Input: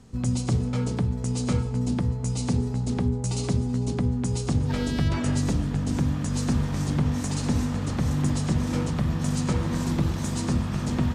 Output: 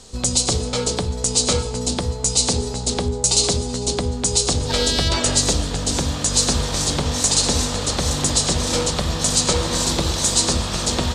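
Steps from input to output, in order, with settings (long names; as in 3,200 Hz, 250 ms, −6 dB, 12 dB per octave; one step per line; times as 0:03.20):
octave-band graphic EQ 125/250/500/2,000/4,000/8,000 Hz −12/−8/+5/−3/+11/+10 dB
level +8.5 dB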